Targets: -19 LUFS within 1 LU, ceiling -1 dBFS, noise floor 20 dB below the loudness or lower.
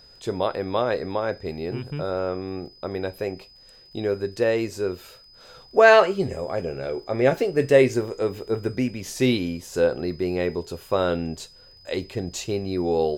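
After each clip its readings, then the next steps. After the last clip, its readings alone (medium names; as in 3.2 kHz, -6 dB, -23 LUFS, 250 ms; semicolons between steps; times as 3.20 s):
tick rate 31 per s; steady tone 5 kHz; tone level -49 dBFS; loudness -24.0 LUFS; peak level -2.0 dBFS; loudness target -19.0 LUFS
-> de-click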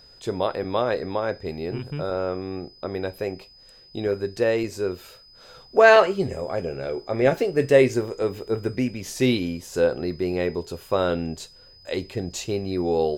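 tick rate 0.15 per s; steady tone 5 kHz; tone level -49 dBFS
-> band-stop 5 kHz, Q 30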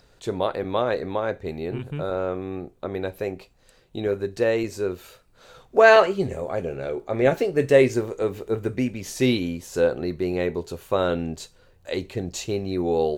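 steady tone not found; loudness -24.0 LUFS; peak level -2.0 dBFS; loudness target -19.0 LUFS
-> trim +5 dB; peak limiter -1 dBFS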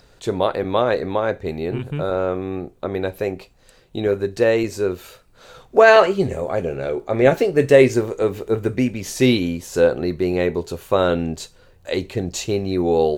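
loudness -19.5 LUFS; peak level -1.0 dBFS; noise floor -53 dBFS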